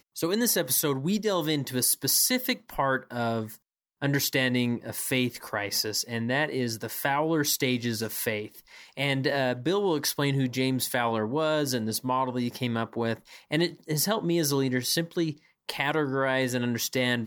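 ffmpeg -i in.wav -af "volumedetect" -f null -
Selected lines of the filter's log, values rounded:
mean_volume: -27.8 dB
max_volume: -10.4 dB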